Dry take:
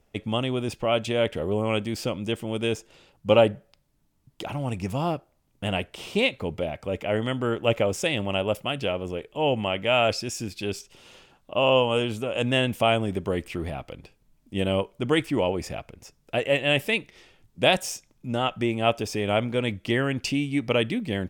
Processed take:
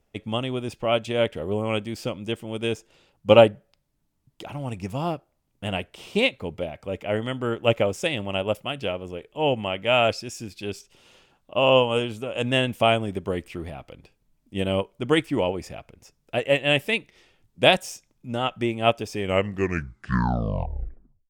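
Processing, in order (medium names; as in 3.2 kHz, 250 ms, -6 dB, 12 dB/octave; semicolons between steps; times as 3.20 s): tape stop on the ending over 2.15 s; upward expansion 1.5:1, over -32 dBFS; trim +5 dB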